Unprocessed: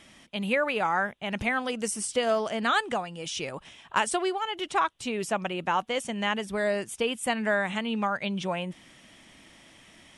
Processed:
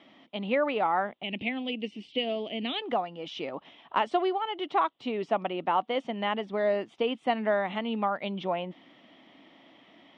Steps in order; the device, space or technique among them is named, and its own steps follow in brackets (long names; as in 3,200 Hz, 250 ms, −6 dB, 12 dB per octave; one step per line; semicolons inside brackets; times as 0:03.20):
kitchen radio (loudspeaker in its box 230–3,400 Hz, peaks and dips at 280 Hz +6 dB, 710 Hz +4 dB, 1,600 Hz −9 dB, 2,500 Hz −6 dB)
0:01.23–0:02.82: drawn EQ curve 330 Hz 0 dB, 1,400 Hz −21 dB, 2,600 Hz +9 dB, 6,500 Hz −11 dB